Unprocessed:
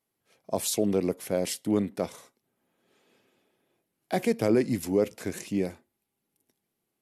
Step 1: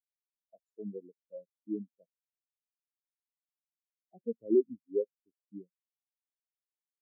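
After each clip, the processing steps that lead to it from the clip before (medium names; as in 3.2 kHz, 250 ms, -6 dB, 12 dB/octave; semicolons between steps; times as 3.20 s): spectral contrast expander 4:1; trim -3 dB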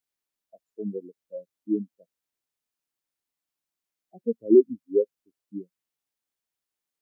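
peaking EQ 300 Hz +3 dB; trim +7.5 dB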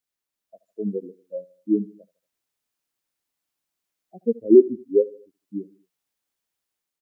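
level rider gain up to 5 dB; feedback delay 77 ms, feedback 46%, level -20.5 dB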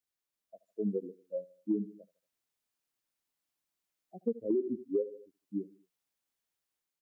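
peak limiter -13.5 dBFS, peak gain reduction 10 dB; compression, threshold -22 dBFS, peak gain reduction 6 dB; trim -4.5 dB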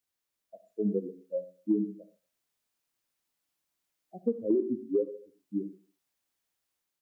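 reverberation, pre-delay 3 ms, DRR 10.5 dB; trim +3.5 dB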